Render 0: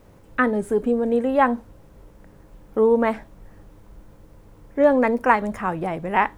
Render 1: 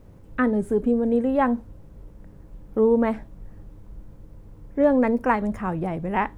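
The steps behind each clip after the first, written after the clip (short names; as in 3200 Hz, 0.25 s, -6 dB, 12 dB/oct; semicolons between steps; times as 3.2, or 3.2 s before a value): low shelf 360 Hz +11.5 dB; gain -6.5 dB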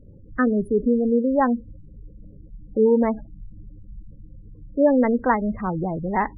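spectral gate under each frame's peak -20 dB strong; gain +1.5 dB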